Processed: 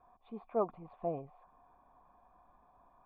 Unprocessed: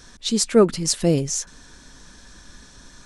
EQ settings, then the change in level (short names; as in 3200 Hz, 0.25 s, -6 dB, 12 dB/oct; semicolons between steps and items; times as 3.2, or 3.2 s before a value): vocal tract filter a; +3.0 dB